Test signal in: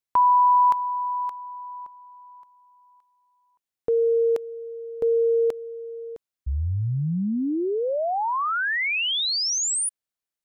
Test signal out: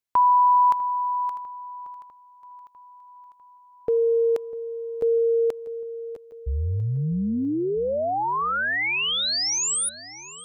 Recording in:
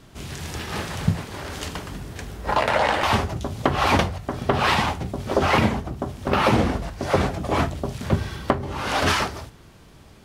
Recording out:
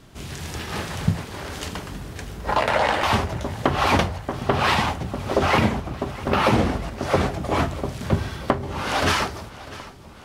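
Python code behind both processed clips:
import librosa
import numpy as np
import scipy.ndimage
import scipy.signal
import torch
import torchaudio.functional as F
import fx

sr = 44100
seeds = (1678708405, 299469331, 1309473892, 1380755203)

y = fx.echo_feedback(x, sr, ms=649, feedback_pct=60, wet_db=-18.0)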